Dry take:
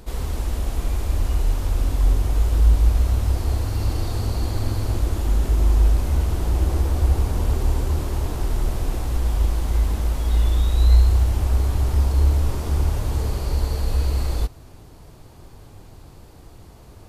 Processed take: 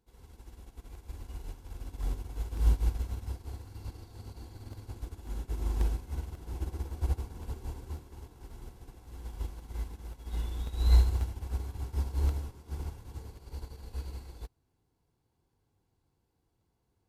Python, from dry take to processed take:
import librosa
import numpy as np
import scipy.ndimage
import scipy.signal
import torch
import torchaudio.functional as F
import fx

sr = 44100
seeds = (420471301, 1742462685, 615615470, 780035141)

y = fx.notch_comb(x, sr, f0_hz=610.0)
y = fx.buffer_crackle(y, sr, first_s=0.95, period_s=0.54, block=64, kind='repeat')
y = fx.upward_expand(y, sr, threshold_db=-31.0, expansion=2.5)
y = y * librosa.db_to_amplitude(-2.5)